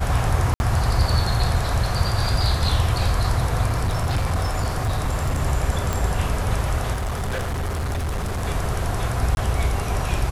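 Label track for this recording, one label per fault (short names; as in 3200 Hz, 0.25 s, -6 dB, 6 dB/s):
0.540000	0.600000	gap 61 ms
3.660000	5.390000	clipped -17.5 dBFS
5.930000	5.930000	pop
6.930000	8.450000	clipped -22 dBFS
9.350000	9.370000	gap 21 ms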